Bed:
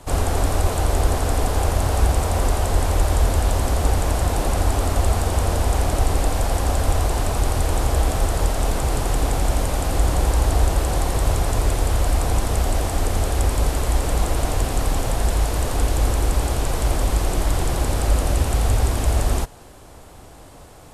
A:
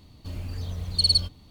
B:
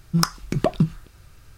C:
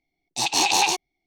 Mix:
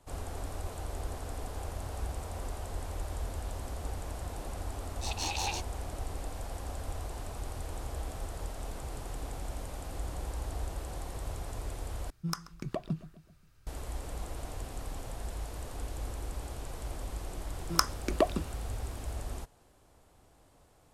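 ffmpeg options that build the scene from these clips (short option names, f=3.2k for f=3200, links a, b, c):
-filter_complex "[2:a]asplit=2[a][b];[0:a]volume=-19dB[c];[a]asplit=2[d][e];[e]adelay=132,lowpass=f=4.1k:p=1,volume=-17dB,asplit=2[f][g];[g]adelay=132,lowpass=f=4.1k:p=1,volume=0.51,asplit=2[h][i];[i]adelay=132,lowpass=f=4.1k:p=1,volume=0.51,asplit=2[j][k];[k]adelay=132,lowpass=f=4.1k:p=1,volume=0.51[l];[d][f][h][j][l]amix=inputs=5:normalize=0[m];[b]highpass=f=270:w=0.5412,highpass=f=270:w=1.3066[n];[c]asplit=2[o][p];[o]atrim=end=12.104[q];[m]atrim=end=1.57,asetpts=PTS-STARTPTS,volume=-15dB[r];[p]atrim=start=13.666[s];[3:a]atrim=end=1.26,asetpts=PTS-STARTPTS,volume=-15dB,afade=t=in:d=0.004:c=hsin,afade=t=out:st=1.256:d=0.004:c=hsin,adelay=205065S[t];[n]atrim=end=1.57,asetpts=PTS-STARTPTS,volume=-4dB,afade=t=in:d=0.004:c=hsin,afade=t=out:st=1.566:d=0.004:c=hsin,adelay=17560[u];[q][r]acrossfade=d=0.004:c1=hsin:c2=hsin[v];[v][s]acrossfade=d=0.004:c1=hsin:c2=hsin[w];[w][t][u]amix=inputs=3:normalize=0"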